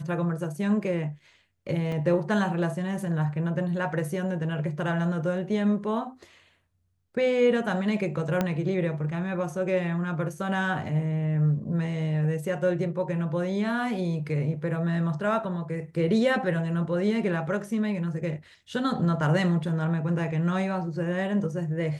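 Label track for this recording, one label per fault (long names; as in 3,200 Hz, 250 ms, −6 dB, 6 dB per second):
1.920000	1.920000	drop-out 3 ms
8.410000	8.410000	click −12 dBFS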